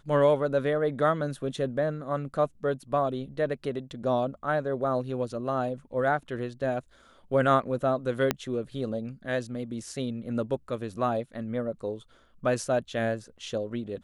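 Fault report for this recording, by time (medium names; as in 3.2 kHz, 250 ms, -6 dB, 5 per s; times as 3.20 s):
8.31 s: pop -9 dBFS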